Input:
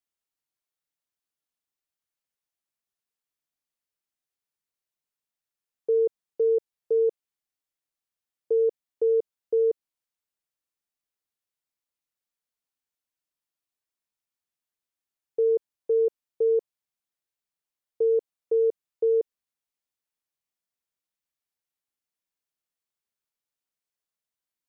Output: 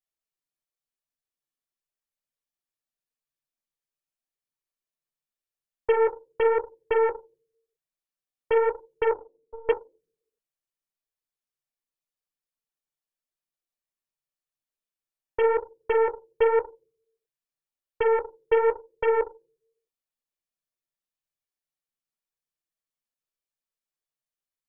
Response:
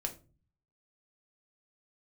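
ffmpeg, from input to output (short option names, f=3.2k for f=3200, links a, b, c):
-filter_complex "[0:a]asettb=1/sr,asplit=3[a][b][c];[a]atrim=end=9.114[d];[b]atrim=start=9.11:end=9.69,asetpts=PTS-STARTPTS,afade=t=in:d=0.004:c=qsin,afade=t=out:st=0.576:d=0.004:c=qsin,asplit=3[e][f][g];[e]bandpass=f=730:t=q:w=8,volume=0dB[h];[f]bandpass=f=1.09k:t=q:w=8,volume=-6dB[i];[g]bandpass=f=2.44k:t=q:w=8,volume=-9dB[j];[h][i][j]amix=inputs=3:normalize=0[k];[c]atrim=start=9.686[l];[d][k]acrossfade=d=0.004:c1=hsin:c2=qsin[m];[m][l]acrossfade=d=0.004:c1=qsin:c2=hsin[n];[1:a]atrim=start_sample=2205[o];[n][o]afir=irnorm=-1:irlink=0,aeval=exprs='0.178*(cos(1*acos(clip(val(0)/0.178,-1,1)))-cos(1*PI/2))+0.0316*(cos(2*acos(clip(val(0)/0.178,-1,1)))-cos(2*PI/2))+0.0224*(cos(6*acos(clip(val(0)/0.178,-1,1)))-cos(6*PI/2))+0.0158*(cos(7*acos(clip(val(0)/0.178,-1,1)))-cos(7*PI/2))':c=same,flanger=delay=0.2:depth=8.8:regen=-31:speed=0.89:shape=triangular,acrossover=split=340[p][q];[p]acompressor=threshold=-48dB:ratio=6[r];[r][q]amix=inputs=2:normalize=0,volume=7dB"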